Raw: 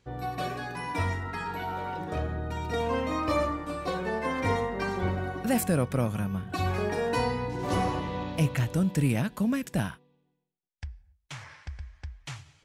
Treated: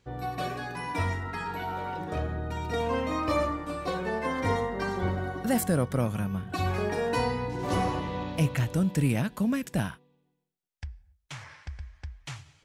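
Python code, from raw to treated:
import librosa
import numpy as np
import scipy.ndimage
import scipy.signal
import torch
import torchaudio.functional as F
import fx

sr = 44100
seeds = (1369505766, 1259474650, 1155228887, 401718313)

y = fx.notch(x, sr, hz=2500.0, q=5.8, at=(4.27, 6.0))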